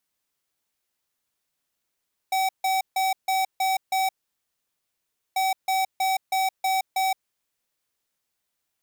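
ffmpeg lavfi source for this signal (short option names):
-f lavfi -i "aevalsrc='0.0708*(2*lt(mod(762*t,1),0.5)-1)*clip(min(mod(mod(t,3.04),0.32),0.17-mod(mod(t,3.04),0.32))/0.005,0,1)*lt(mod(t,3.04),1.92)':d=6.08:s=44100"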